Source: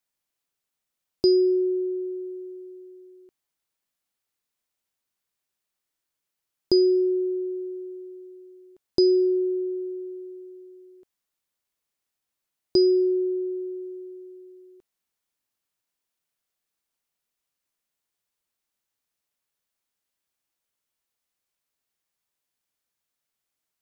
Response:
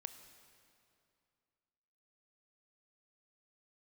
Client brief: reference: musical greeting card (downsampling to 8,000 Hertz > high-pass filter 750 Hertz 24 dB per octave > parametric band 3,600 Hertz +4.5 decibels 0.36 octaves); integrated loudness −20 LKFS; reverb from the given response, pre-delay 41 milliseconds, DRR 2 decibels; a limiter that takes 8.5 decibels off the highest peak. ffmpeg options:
-filter_complex "[0:a]alimiter=limit=-19dB:level=0:latency=1,asplit=2[link_01][link_02];[1:a]atrim=start_sample=2205,adelay=41[link_03];[link_02][link_03]afir=irnorm=-1:irlink=0,volume=2.5dB[link_04];[link_01][link_04]amix=inputs=2:normalize=0,aresample=8000,aresample=44100,highpass=frequency=750:width=0.5412,highpass=frequency=750:width=1.3066,equalizer=frequency=3600:width_type=o:width=0.36:gain=4.5,volume=27.5dB"

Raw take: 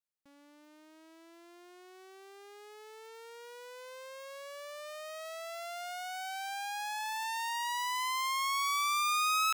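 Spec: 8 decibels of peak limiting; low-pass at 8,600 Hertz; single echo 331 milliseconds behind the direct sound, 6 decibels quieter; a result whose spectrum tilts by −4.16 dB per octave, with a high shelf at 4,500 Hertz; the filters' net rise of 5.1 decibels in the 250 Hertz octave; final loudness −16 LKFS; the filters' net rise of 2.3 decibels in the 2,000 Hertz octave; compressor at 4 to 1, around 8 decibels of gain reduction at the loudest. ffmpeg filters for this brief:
ffmpeg -i in.wav -af "lowpass=8600,equalizer=frequency=250:width_type=o:gain=8,equalizer=frequency=2000:width_type=o:gain=3.5,highshelf=frequency=4500:gain=-3.5,acompressor=threshold=-37dB:ratio=4,alimiter=level_in=16.5dB:limit=-24dB:level=0:latency=1,volume=-16.5dB,aecho=1:1:331:0.501,volume=29.5dB" out.wav

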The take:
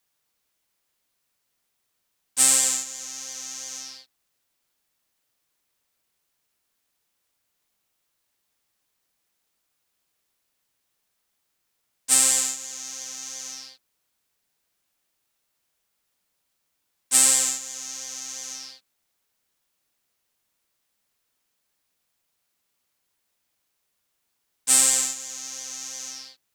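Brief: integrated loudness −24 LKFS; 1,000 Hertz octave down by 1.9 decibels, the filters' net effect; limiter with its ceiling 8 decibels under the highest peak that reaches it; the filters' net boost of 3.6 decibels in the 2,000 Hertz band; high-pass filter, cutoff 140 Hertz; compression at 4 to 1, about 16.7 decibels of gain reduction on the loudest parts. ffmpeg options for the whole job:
ffmpeg -i in.wav -af "highpass=140,equalizer=frequency=1000:width_type=o:gain=-4.5,equalizer=frequency=2000:width_type=o:gain=5.5,acompressor=threshold=-33dB:ratio=4,volume=12dB,alimiter=limit=-10dB:level=0:latency=1" out.wav

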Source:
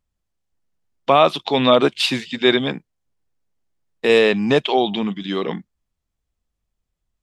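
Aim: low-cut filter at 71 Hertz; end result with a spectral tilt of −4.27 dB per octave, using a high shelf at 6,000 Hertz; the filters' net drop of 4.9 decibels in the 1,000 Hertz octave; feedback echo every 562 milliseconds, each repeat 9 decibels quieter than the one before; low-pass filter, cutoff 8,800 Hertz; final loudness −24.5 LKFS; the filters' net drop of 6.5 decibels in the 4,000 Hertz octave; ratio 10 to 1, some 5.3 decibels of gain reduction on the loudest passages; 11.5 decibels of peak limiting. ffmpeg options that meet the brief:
ffmpeg -i in.wav -af "highpass=71,lowpass=8800,equalizer=frequency=1000:width_type=o:gain=-6.5,equalizer=frequency=4000:width_type=o:gain=-6.5,highshelf=frequency=6000:gain=-3,acompressor=threshold=-16dB:ratio=10,alimiter=limit=-18.5dB:level=0:latency=1,aecho=1:1:562|1124|1686|2248:0.355|0.124|0.0435|0.0152,volume=4.5dB" out.wav

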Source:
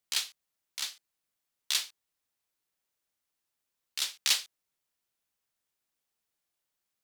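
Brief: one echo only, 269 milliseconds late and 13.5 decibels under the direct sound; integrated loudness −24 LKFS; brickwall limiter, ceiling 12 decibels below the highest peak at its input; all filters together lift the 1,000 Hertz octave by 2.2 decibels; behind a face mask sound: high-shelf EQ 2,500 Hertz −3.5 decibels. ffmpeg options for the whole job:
ffmpeg -i in.wav -af "equalizer=frequency=1000:width_type=o:gain=3.5,alimiter=limit=-23dB:level=0:latency=1,highshelf=frequency=2500:gain=-3.5,aecho=1:1:269:0.211,volume=17.5dB" out.wav

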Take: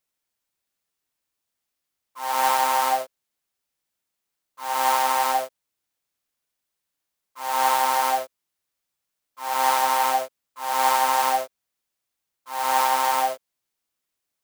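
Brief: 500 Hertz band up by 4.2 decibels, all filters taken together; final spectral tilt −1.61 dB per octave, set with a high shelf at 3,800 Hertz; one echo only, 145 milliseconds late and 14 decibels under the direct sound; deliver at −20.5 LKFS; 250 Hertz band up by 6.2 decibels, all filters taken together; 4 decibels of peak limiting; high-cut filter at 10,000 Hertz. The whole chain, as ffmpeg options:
ffmpeg -i in.wav -af "lowpass=10000,equalizer=frequency=250:width_type=o:gain=5.5,equalizer=frequency=500:width_type=o:gain=4,highshelf=frequency=3800:gain=5.5,alimiter=limit=-9.5dB:level=0:latency=1,aecho=1:1:145:0.2,volume=1dB" out.wav

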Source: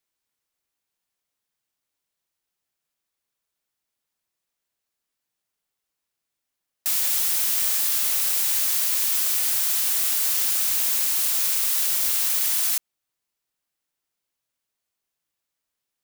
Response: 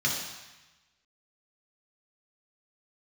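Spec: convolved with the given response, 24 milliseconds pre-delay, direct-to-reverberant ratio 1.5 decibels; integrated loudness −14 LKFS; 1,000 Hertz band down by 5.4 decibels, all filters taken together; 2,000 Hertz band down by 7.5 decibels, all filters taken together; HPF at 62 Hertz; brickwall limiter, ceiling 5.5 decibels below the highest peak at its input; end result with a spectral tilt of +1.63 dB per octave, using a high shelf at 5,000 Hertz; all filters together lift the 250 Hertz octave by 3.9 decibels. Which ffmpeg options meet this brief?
-filter_complex "[0:a]highpass=62,equalizer=frequency=250:width_type=o:gain=5.5,equalizer=frequency=1000:width_type=o:gain=-4.5,equalizer=frequency=2000:width_type=o:gain=-8,highshelf=frequency=5000:gain=-4,alimiter=limit=-18.5dB:level=0:latency=1,asplit=2[link_01][link_02];[1:a]atrim=start_sample=2205,adelay=24[link_03];[link_02][link_03]afir=irnorm=-1:irlink=0,volume=-11.5dB[link_04];[link_01][link_04]amix=inputs=2:normalize=0,volume=10dB"

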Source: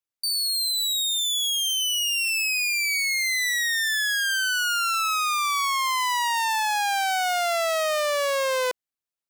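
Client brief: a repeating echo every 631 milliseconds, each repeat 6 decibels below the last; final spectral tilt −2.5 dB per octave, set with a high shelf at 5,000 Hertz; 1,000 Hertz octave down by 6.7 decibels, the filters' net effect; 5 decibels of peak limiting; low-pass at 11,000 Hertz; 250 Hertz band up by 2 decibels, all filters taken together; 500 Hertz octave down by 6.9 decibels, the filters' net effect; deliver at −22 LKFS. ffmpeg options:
ffmpeg -i in.wav -af "lowpass=11000,equalizer=frequency=250:width_type=o:gain=7,equalizer=frequency=500:width_type=o:gain=-7,equalizer=frequency=1000:width_type=o:gain=-7.5,highshelf=frequency=5000:gain=5,alimiter=limit=-20dB:level=0:latency=1,aecho=1:1:631|1262|1893|2524|3155|3786:0.501|0.251|0.125|0.0626|0.0313|0.0157,volume=3.5dB" out.wav

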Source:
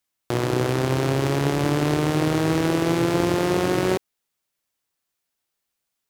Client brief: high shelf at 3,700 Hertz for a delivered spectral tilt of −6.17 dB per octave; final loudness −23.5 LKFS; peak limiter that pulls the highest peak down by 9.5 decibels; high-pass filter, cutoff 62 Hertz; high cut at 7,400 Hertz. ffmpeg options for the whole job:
ffmpeg -i in.wav -af "highpass=62,lowpass=7400,highshelf=frequency=3700:gain=-5,volume=3.5dB,alimiter=limit=-12.5dB:level=0:latency=1" out.wav

